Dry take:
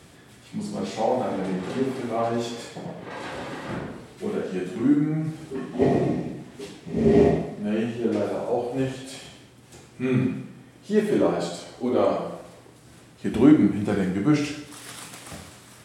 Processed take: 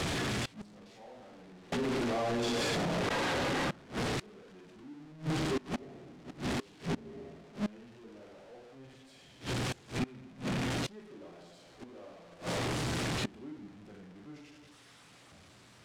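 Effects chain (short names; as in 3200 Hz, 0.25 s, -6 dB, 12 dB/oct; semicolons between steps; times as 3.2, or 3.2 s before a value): zero-crossing step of -18.5 dBFS; high shelf 2800 Hz +11.5 dB; flipped gate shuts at -10 dBFS, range -24 dB; tape spacing loss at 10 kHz 22 dB; 1.72–3.71 fast leveller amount 100%; gain -8 dB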